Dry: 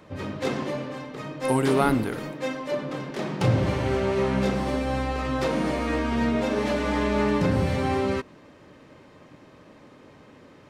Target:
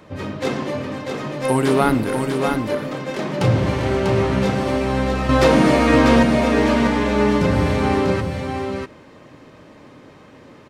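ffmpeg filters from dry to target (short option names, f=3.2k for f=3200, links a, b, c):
-filter_complex "[0:a]asettb=1/sr,asplit=3[a][b][c];[a]atrim=end=5.294[d];[b]atrim=start=5.29:end=6.23,asetpts=PTS-STARTPTS,afade=t=in:d=0.004:c=qsin,afade=t=out:st=0.936:d=0.004:c=qsin,acontrast=84[e];[c]atrim=start=6.226[f];[d][e]acrossfade=d=0.004:c1=hsin:c2=qsin[g];[g][f]acrossfade=d=0.004:c1=qsin:c2=hsin,aecho=1:1:644:0.562,volume=4.5dB"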